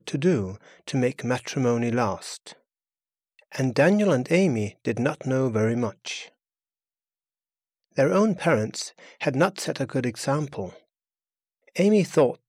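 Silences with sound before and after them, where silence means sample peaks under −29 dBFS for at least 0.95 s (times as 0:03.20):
0:02.47–0:03.55
0:06.19–0:07.98
0:10.68–0:11.76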